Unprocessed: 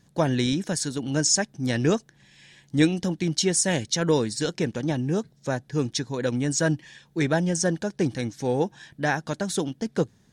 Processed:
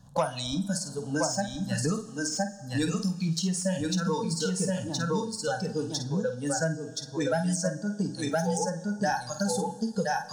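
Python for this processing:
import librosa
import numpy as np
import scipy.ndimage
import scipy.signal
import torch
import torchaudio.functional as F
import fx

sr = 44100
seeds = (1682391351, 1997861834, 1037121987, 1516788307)

y = fx.leveller(x, sr, passes=1)
y = fx.fixed_phaser(y, sr, hz=880.0, stages=4)
y = fx.doubler(y, sr, ms=49.0, db=-8)
y = fx.noise_reduce_blind(y, sr, reduce_db=19)
y = 10.0 ** (-9.5 / 20.0) * np.tanh(y / 10.0 ** (-9.5 / 20.0))
y = fx.high_shelf(y, sr, hz=2600.0, db=-9.0)
y = y + 10.0 ** (-3.5 / 20.0) * np.pad(y, (int(1020 * sr / 1000.0), 0))[:len(y)]
y = fx.rev_double_slope(y, sr, seeds[0], early_s=0.72, late_s=2.7, knee_db=-18, drr_db=13.0)
y = fx.band_squash(y, sr, depth_pct=100)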